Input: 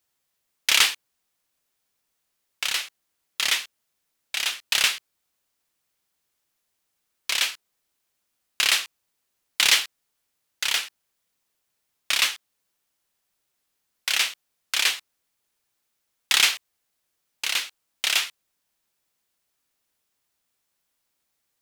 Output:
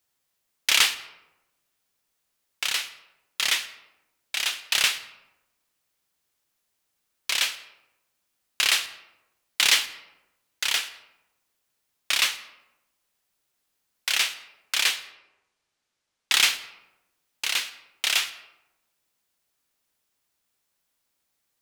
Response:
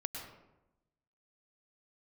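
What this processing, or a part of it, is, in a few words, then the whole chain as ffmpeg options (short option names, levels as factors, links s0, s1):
saturated reverb return: -filter_complex "[0:a]asettb=1/sr,asplit=3[s0][s1][s2];[s0]atrim=end=14.964[s3];[s1]atrim=start=14.96:end=16.32,asetpts=PTS-STARTPTS,afade=t=in:d=0.004:c=qsin,afade=t=out:st=1.356:d=0.004:c=qsin,lowpass=6800[s4];[s2]atrim=start=16.316[s5];[s3][s4]acrossfade=d=0.004:c1=hsin:c2=qsin[s6];[s6][s5]acrossfade=d=0.004:c1=qsin:c2=hsin,asplit=2[s7][s8];[1:a]atrim=start_sample=2205[s9];[s8][s9]afir=irnorm=-1:irlink=0,asoftclip=type=tanh:threshold=0.0841,volume=0.316[s10];[s7][s10]amix=inputs=2:normalize=0,volume=0.794"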